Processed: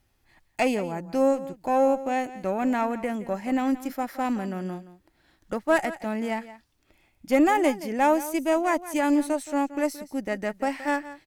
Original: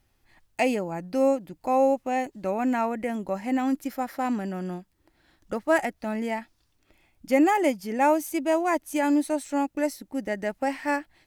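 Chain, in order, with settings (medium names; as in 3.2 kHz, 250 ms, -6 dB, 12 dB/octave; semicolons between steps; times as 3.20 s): Chebyshev shaper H 4 -23 dB, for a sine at -10 dBFS; delay 173 ms -15.5 dB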